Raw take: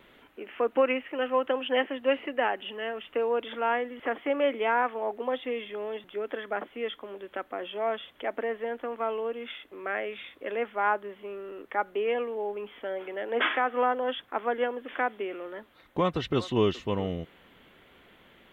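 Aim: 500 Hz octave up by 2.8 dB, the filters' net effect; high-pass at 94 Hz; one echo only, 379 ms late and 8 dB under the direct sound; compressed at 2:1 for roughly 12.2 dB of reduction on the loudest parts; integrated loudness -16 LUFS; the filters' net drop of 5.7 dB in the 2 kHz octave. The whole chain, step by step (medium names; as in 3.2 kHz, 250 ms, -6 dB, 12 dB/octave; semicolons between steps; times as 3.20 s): high-pass 94 Hz; peaking EQ 500 Hz +3.5 dB; peaking EQ 2 kHz -8 dB; compression 2:1, threshold -40 dBFS; delay 379 ms -8 dB; trim +21.5 dB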